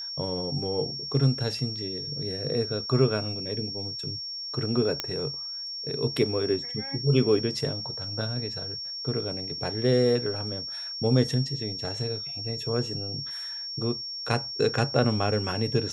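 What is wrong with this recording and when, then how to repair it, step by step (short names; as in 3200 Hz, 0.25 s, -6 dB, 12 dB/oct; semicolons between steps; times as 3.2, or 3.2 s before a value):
tone 5500 Hz -33 dBFS
5 pop -11 dBFS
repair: de-click; notch 5500 Hz, Q 30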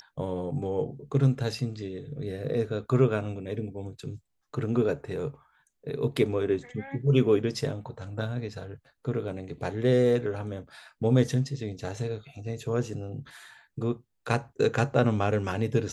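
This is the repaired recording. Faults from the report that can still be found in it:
none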